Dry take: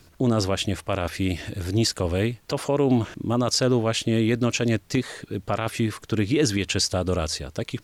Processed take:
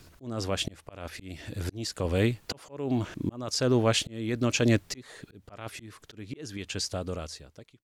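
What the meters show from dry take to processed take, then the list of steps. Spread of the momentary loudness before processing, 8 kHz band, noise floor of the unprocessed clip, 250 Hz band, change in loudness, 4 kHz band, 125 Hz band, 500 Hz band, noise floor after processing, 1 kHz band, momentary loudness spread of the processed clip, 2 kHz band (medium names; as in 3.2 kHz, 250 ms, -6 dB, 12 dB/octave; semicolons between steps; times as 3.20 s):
7 LU, -6.5 dB, -55 dBFS, -7.0 dB, -5.5 dB, -6.0 dB, -6.5 dB, -6.5 dB, -61 dBFS, -8.0 dB, 19 LU, -5.0 dB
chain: fade out at the end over 2.31 s; slow attack 595 ms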